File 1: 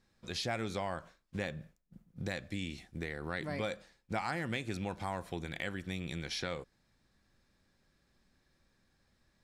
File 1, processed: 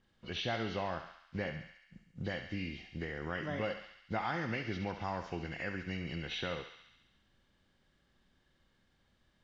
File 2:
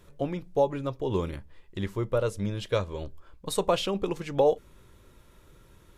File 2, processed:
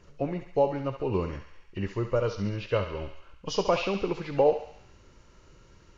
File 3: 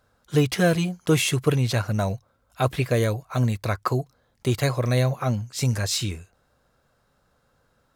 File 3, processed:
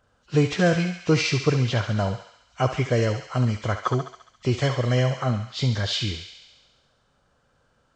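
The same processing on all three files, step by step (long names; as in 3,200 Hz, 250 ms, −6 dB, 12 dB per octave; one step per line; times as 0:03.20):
hearing-aid frequency compression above 1,800 Hz 1.5 to 1
feedback echo with a high-pass in the loop 69 ms, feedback 71%, high-pass 840 Hz, level −7 dB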